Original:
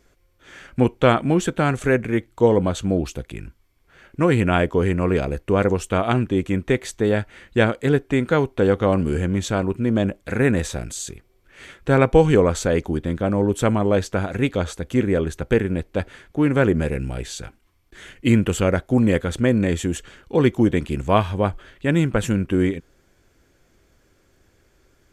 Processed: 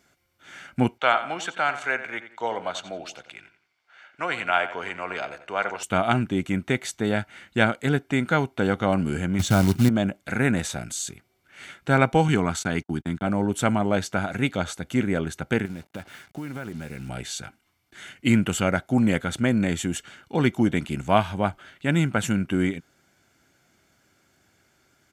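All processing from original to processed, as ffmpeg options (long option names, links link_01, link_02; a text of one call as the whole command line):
ffmpeg -i in.wav -filter_complex "[0:a]asettb=1/sr,asplit=3[link_01][link_02][link_03];[link_01]atrim=end=0.984[link_04];[link_02]atrim=start=0.98:end=5.83,asetpts=PTS-STARTPTS,afade=type=in:duration=0.004:curve=qsin,afade=type=out:start_time=4.846:duration=0.004:curve=qsin,acrossover=split=510 6300:gain=0.0708 1 0.141[link_05][link_06][link_07];[link_05][link_06][link_07]amix=inputs=3:normalize=0,asplit=2[link_08][link_09];[link_09]adelay=88,lowpass=frequency=4800:poles=1,volume=-12dB,asplit=2[link_10][link_11];[link_11]adelay=88,lowpass=frequency=4800:poles=1,volume=0.35,asplit=2[link_12][link_13];[link_13]adelay=88,lowpass=frequency=4800:poles=1,volume=0.35,asplit=2[link_14][link_15];[link_15]adelay=88,lowpass=frequency=4800:poles=1,volume=0.35[link_16];[link_08][link_10][link_12][link_14][link_16]amix=inputs=5:normalize=0,atrim=end_sample=213885[link_17];[link_03]atrim=start=5.826[link_18];[link_04][link_17]acrossfade=duration=0.004:curve1=hsin:curve2=qsin[link_19];[link_19][link_18]acrossfade=duration=0.004:curve1=qsin:curve2=hsin,asettb=1/sr,asplit=3[link_20][link_21][link_22];[link_20]atrim=end=9.394[link_23];[link_21]atrim=start=9.39:end=9.89,asetpts=PTS-STARTPTS,afade=type=in:duration=0.004:curve=qsin,afade=type=out:start_time=0.496:duration=0.004:curve=qsin,equalizer=frequency=81:width_type=o:width=2.9:gain=13,acrusher=bits=5:mode=log:mix=0:aa=0.000001[link_24];[link_22]atrim=start=9.886[link_25];[link_23][link_24]acrossfade=duration=0.004:curve1=hsin:curve2=qsin[link_26];[link_26][link_25]acrossfade=duration=0.004:curve1=qsin:curve2=hsin,asettb=1/sr,asplit=3[link_27][link_28][link_29];[link_27]atrim=end=12.284[link_30];[link_28]atrim=start=12.28:end=13.27,asetpts=PTS-STARTPTS,afade=type=in:duration=0.004:curve=qsin,afade=type=out:start_time=0.986:duration=0.004:curve=qsin,agate=range=-59dB:threshold=-29dB:ratio=16:release=100:detection=peak,highpass=43,equalizer=frequency=540:width=4.6:gain=-14[link_31];[link_29]atrim=start=13.266[link_32];[link_30][link_31]acrossfade=duration=0.004:curve1=hsin:curve2=qsin[link_33];[link_33][link_32]acrossfade=duration=0.004:curve1=qsin:curve2=hsin,asettb=1/sr,asplit=3[link_34][link_35][link_36];[link_34]atrim=end=15.654[link_37];[link_35]atrim=start=15.65:end=17.09,asetpts=PTS-STARTPTS,afade=type=in:duration=0.004:curve=qsin,afade=type=out:start_time=1.436:duration=0.004:curve=qsin,acompressor=threshold=-26dB:ratio=8:attack=3.2:release=140:knee=1:detection=peak,acrusher=bits=7:mix=0:aa=0.5[link_38];[link_36]atrim=start=17.086[link_39];[link_37][link_38]acrossfade=duration=0.004:curve1=hsin:curve2=qsin[link_40];[link_40][link_39]acrossfade=duration=0.004:curve1=qsin:curve2=hsin,highpass=160,equalizer=frequency=500:width_type=o:width=0.59:gain=-8.5,aecho=1:1:1.4:0.36" out.wav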